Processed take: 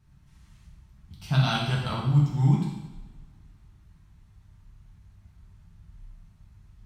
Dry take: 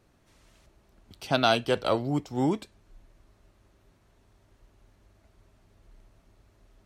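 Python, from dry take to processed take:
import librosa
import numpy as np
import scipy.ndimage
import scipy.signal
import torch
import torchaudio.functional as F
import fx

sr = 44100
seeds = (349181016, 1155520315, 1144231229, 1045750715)

y = fx.curve_eq(x, sr, hz=(170.0, 250.0, 510.0, 930.0), db=(0, -14, -27, -13))
y = fx.rev_double_slope(y, sr, seeds[0], early_s=0.97, late_s=3.1, knee_db=-26, drr_db=-4.5)
y = y * 10.0 ** (5.5 / 20.0)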